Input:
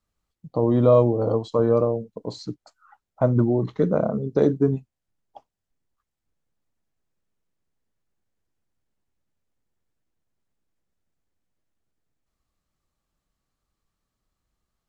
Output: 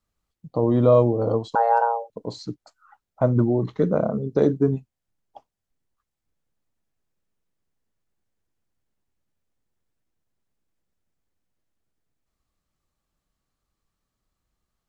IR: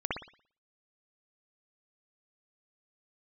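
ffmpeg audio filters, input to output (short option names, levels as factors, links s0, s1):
-filter_complex "[0:a]asettb=1/sr,asplit=3[s0][s1][s2];[s0]atrim=end=1.554[s3];[s1]atrim=start=1.55:end=2.1,asetpts=PTS-STARTPTS,afade=t=in:d=0.004:c=qsin,afade=t=out:st=0.546:d=0.004:c=qsin,afreqshift=350[s4];[s2]atrim=start=2.096[s5];[s3][s4]acrossfade=d=0.004:c1=hsin:c2=qsin[s6];[s6][s5]acrossfade=d=0.004:c1=qsin:c2=hsin"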